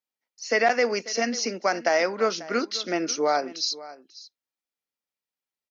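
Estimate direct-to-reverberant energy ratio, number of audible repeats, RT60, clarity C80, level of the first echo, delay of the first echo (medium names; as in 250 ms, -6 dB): no reverb, 1, no reverb, no reverb, -18.0 dB, 541 ms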